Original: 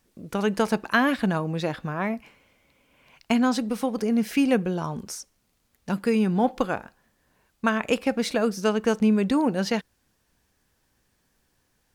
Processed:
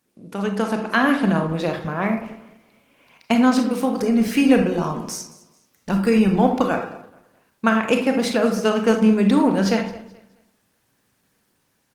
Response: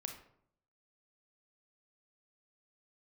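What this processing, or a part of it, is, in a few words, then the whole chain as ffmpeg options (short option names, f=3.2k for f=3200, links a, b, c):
far-field microphone of a smart speaker: -filter_complex "[0:a]aecho=1:1:214|428|642:0.106|0.0339|0.0108[a];[1:a]atrim=start_sample=2205[b];[a][b]afir=irnorm=-1:irlink=0,highpass=130,dynaudnorm=f=190:g=9:m=6dB,volume=2dB" -ar 48000 -c:a libopus -b:a 20k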